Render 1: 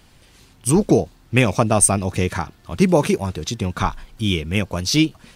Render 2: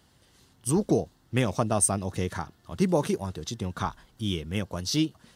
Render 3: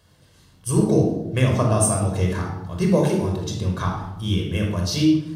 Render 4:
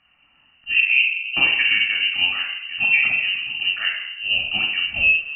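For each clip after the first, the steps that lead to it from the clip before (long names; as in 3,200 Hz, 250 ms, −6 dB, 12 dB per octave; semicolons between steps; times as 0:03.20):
high-pass filter 61 Hz; parametric band 2,400 Hz −11.5 dB 0.21 octaves; level −8.5 dB
convolution reverb RT60 0.95 s, pre-delay 23 ms, DRR 0.5 dB
voice inversion scrambler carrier 2,900 Hz; low-pass that shuts in the quiet parts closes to 2,300 Hz, open at −16 dBFS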